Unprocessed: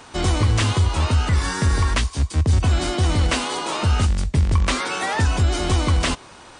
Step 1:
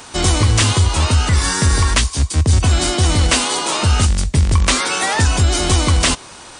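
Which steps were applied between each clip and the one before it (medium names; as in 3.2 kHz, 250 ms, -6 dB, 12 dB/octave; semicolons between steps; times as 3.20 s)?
treble shelf 4.6 kHz +11 dB; trim +4 dB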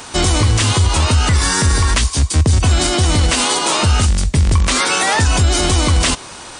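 peak limiter -9.5 dBFS, peak gain reduction 7.5 dB; trim +4 dB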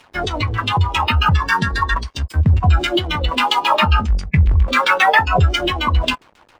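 LFO low-pass saw down 7.4 Hz 350–3400 Hz; crossover distortion -34.5 dBFS; spectral noise reduction 14 dB; trim +3 dB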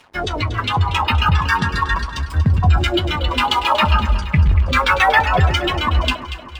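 echo whose repeats swap between lows and highs 118 ms, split 1.4 kHz, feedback 72%, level -9 dB; trim -1 dB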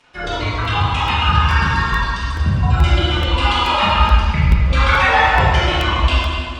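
reverberation RT60 1.6 s, pre-delay 12 ms, DRR -8.5 dB; resampled via 22.05 kHz; crackling interface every 0.43 s, samples 64, repeat, from 0.65 s; trim -7.5 dB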